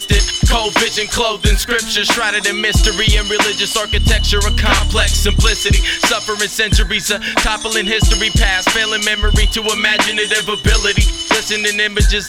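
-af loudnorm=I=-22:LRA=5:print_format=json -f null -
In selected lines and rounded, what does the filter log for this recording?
"input_i" : "-13.9",
"input_tp" : "-3.0",
"input_lra" : "0.5",
"input_thresh" : "-23.9",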